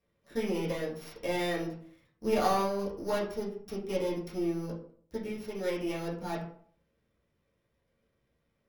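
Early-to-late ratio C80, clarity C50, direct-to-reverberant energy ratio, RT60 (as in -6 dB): 10.5 dB, 6.5 dB, -8.0 dB, 0.55 s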